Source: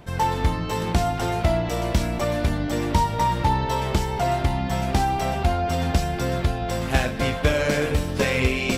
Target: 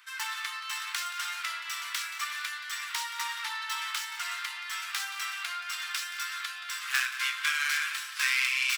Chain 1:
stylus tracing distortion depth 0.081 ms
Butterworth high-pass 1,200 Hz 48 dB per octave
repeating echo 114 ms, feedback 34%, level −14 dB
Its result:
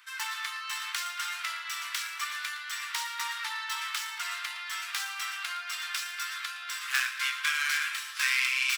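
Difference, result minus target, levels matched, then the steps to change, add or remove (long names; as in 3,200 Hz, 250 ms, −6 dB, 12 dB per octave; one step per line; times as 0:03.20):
echo 62 ms early
change: repeating echo 176 ms, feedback 34%, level −14 dB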